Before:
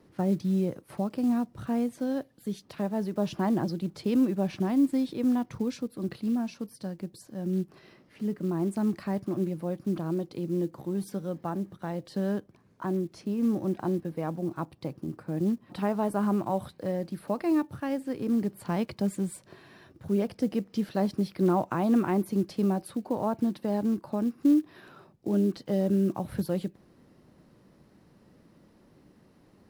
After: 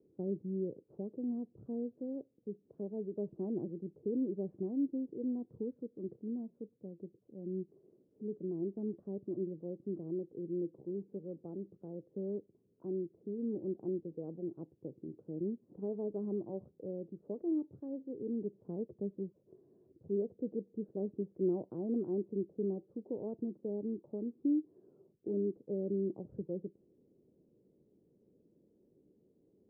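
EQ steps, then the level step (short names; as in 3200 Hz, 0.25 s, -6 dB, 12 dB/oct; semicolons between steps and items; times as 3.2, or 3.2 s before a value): ladder low-pass 480 Hz, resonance 60%; low shelf 64 Hz -8.5 dB; -3.0 dB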